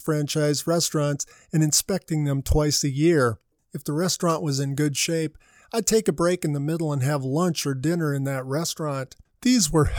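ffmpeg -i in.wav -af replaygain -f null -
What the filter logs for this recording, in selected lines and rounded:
track_gain = +4.3 dB
track_peak = 0.322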